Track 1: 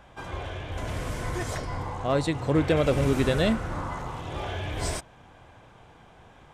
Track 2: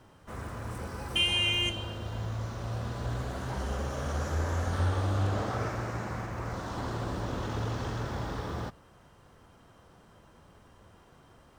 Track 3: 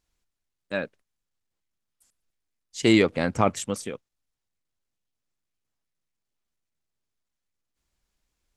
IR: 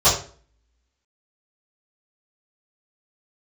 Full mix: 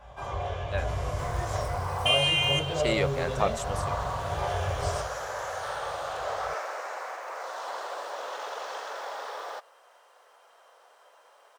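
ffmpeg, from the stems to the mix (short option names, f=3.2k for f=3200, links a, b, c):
-filter_complex "[0:a]acompressor=threshold=-30dB:ratio=6,lowshelf=f=400:g=8,volume=-6.5dB,asplit=2[a][b];[b]volume=-16dB[c];[1:a]highpass=f=470:w=0.5412,highpass=f=470:w=1.3066,adelay=900,volume=2.5dB[d];[2:a]volume=-5.5dB[e];[3:a]atrim=start_sample=2205[f];[c][f]afir=irnorm=-1:irlink=0[g];[a][d][e][g]amix=inputs=4:normalize=0,lowshelf=f=410:t=q:w=1.5:g=-8"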